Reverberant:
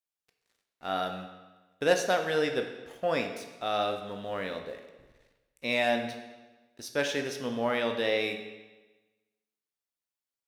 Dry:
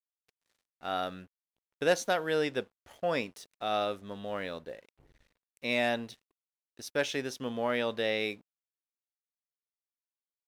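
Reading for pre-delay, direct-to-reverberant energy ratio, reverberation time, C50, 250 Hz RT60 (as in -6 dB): 15 ms, 5.0 dB, 1.2 s, 7.5 dB, 1.2 s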